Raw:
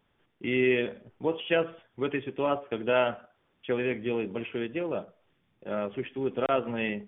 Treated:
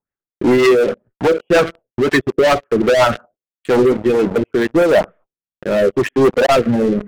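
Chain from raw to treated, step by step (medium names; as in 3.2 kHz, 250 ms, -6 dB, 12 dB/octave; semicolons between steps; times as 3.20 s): reverb removal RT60 1.5 s; LFO low-pass sine 2 Hz 470–1800 Hz; gate -58 dBFS, range -28 dB; waveshaping leveller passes 5; in parallel at -2 dB: peak limiter -20 dBFS, peak gain reduction 9.5 dB; on the sum: rotary cabinet horn 5.5 Hz, later 0.8 Hz, at 3.70 s; reverse; upward compressor, threshold -18 dBFS; reverse; trim +2.5 dB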